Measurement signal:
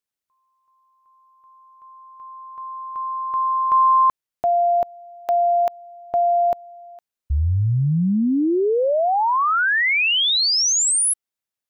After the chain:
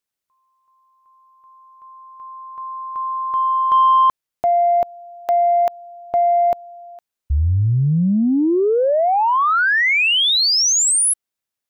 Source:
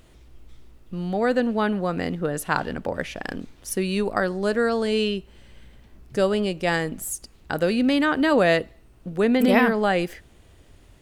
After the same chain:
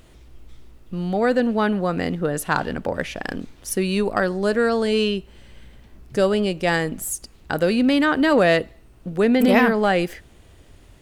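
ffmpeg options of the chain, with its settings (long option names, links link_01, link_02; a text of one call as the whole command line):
ffmpeg -i in.wav -af "acontrast=65,volume=-3.5dB" out.wav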